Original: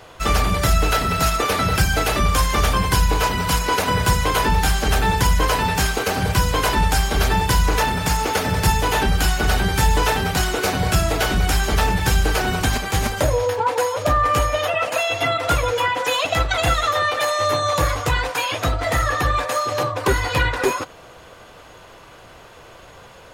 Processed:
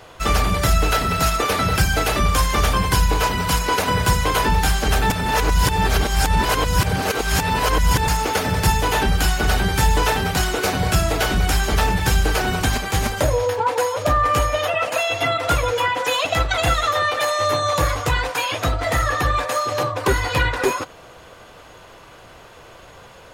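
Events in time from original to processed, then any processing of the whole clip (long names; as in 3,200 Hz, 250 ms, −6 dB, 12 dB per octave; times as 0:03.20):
0:05.10–0:08.08: reverse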